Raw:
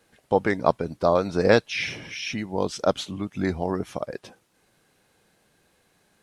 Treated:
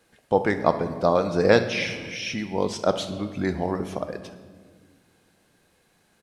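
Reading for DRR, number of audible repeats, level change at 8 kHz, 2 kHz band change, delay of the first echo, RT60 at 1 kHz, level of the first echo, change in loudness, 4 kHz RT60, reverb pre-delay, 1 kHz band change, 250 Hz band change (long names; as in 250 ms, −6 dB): 9.0 dB, 1, +0.5 dB, +0.5 dB, 67 ms, 1.4 s, −17.5 dB, +0.5 dB, 1.3 s, 4 ms, +0.5 dB, +0.5 dB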